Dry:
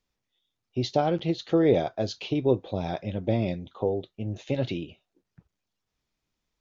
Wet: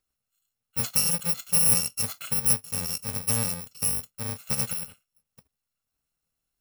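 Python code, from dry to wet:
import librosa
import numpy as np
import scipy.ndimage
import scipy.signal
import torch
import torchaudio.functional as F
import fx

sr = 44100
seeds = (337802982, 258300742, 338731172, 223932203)

y = fx.bit_reversed(x, sr, seeds[0], block=128)
y = fx.low_shelf(y, sr, hz=85.0, db=-6.0)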